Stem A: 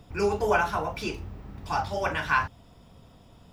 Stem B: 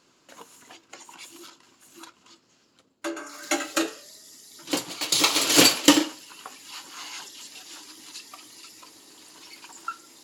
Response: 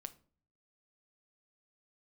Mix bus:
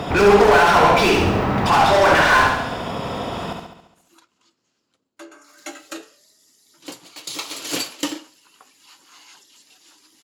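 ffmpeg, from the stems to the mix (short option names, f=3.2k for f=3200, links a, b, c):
-filter_complex "[0:a]asplit=2[a][b];[b]highpass=f=720:p=1,volume=39dB,asoftclip=type=tanh:threshold=-8.5dB[c];[a][c]amix=inputs=2:normalize=0,lowpass=f=1.5k:p=1,volume=-6dB,volume=2dB,asplit=2[d][e];[e]volume=-4.5dB[f];[1:a]adelay=2150,volume=-9dB[g];[f]aecho=0:1:69|138|207|276|345|414|483|552|621:1|0.57|0.325|0.185|0.106|0.0602|0.0343|0.0195|0.0111[h];[d][g][h]amix=inputs=3:normalize=0"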